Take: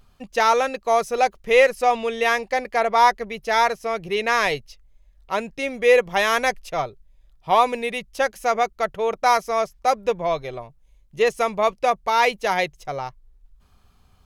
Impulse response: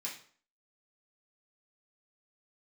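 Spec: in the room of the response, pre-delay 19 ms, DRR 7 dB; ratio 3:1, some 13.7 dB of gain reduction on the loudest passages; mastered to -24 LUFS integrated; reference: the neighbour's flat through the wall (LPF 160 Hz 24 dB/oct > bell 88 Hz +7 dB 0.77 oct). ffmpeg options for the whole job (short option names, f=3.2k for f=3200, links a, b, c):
-filter_complex "[0:a]acompressor=threshold=-30dB:ratio=3,asplit=2[a][b];[1:a]atrim=start_sample=2205,adelay=19[c];[b][c]afir=irnorm=-1:irlink=0,volume=-7dB[d];[a][d]amix=inputs=2:normalize=0,lowpass=f=160:w=0.5412,lowpass=f=160:w=1.3066,equalizer=f=88:t=o:w=0.77:g=7,volume=29.5dB"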